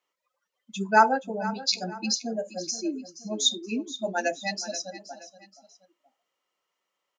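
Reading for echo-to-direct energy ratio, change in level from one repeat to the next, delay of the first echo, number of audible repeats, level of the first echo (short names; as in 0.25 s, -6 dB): -14.5 dB, -8.0 dB, 0.475 s, 2, -15.0 dB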